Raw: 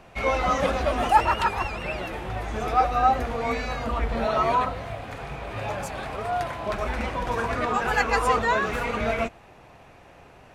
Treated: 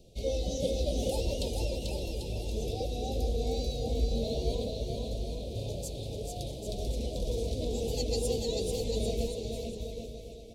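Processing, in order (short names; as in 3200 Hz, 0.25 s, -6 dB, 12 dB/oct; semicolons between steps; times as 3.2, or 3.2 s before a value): Chebyshev band-stop 500–3800 Hz, order 3; bell 240 Hz -5.5 dB 2.8 oct; bouncing-ball echo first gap 0.44 s, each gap 0.8×, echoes 5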